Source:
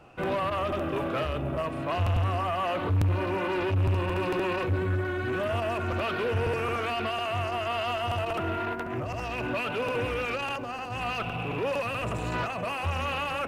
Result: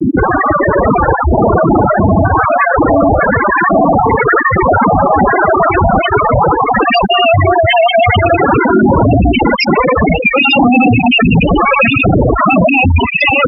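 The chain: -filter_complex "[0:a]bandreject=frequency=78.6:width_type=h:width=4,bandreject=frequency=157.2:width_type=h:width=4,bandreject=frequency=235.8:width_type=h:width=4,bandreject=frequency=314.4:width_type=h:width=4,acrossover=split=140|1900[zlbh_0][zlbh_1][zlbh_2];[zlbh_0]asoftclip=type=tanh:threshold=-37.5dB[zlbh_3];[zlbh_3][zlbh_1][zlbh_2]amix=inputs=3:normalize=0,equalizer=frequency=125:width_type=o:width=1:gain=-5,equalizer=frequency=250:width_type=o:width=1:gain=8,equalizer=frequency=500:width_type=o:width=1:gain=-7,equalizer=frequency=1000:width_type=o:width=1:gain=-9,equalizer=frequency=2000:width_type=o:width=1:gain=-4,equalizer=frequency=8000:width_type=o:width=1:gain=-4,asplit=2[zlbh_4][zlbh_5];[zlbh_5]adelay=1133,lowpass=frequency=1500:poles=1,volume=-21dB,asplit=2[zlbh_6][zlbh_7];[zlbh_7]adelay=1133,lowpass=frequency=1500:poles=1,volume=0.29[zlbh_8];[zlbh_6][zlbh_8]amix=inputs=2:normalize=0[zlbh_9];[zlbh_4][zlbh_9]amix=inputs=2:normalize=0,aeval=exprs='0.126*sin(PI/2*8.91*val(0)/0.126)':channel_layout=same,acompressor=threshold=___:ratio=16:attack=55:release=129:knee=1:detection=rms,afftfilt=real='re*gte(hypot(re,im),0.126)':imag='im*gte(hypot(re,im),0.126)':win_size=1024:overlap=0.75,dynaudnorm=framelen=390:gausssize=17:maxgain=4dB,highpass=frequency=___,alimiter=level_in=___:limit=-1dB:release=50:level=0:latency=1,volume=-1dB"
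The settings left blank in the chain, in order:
-28dB, 42, 28dB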